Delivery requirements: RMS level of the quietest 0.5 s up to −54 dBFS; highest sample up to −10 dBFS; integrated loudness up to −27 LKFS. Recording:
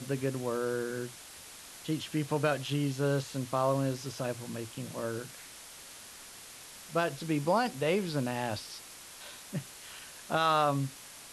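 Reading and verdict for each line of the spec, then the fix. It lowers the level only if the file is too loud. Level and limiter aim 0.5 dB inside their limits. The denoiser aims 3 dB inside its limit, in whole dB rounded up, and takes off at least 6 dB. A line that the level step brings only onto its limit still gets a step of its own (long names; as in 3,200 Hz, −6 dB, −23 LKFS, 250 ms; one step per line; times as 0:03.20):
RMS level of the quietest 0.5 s −49 dBFS: out of spec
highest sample −15.0 dBFS: in spec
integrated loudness −32.5 LKFS: in spec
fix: broadband denoise 8 dB, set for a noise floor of −49 dBFS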